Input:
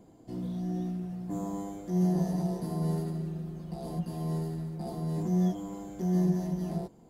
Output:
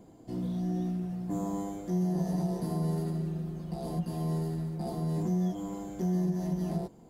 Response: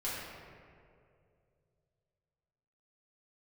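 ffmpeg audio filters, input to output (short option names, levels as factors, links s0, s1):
-af "acompressor=threshold=0.0398:ratio=5,volume=1.26"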